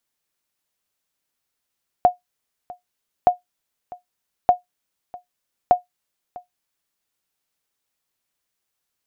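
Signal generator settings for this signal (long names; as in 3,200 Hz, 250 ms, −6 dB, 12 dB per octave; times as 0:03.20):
ping with an echo 719 Hz, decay 0.14 s, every 1.22 s, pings 4, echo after 0.65 s, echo −22 dB −4.5 dBFS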